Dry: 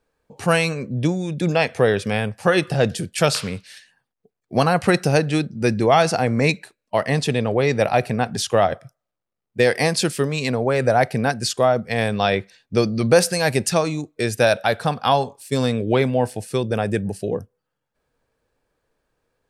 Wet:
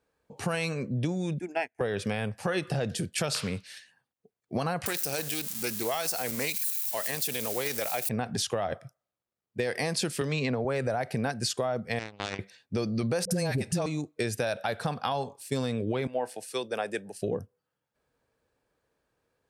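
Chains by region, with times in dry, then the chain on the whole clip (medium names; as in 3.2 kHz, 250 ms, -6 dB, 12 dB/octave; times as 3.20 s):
1.39–1.81 s: static phaser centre 780 Hz, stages 8 + upward expansion 2.5:1, over -42 dBFS
4.86–8.09 s: zero-crossing glitches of -22 dBFS + RIAA curve recording + loudspeaker Doppler distortion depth 0.16 ms
10.21–10.65 s: Bessel low-pass 4 kHz + three bands compressed up and down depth 100%
11.99–12.39 s: low-pass 5.5 kHz 24 dB/octave + power-law waveshaper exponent 3
13.25–13.86 s: de-esser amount 25% + bass shelf 400 Hz +11 dB + phase dispersion highs, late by 57 ms, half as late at 570 Hz
16.07–17.22 s: Bessel high-pass 510 Hz + three bands expanded up and down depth 70%
whole clip: peak limiter -10.5 dBFS; high-pass 51 Hz; compression, threshold -22 dBFS; trim -3.5 dB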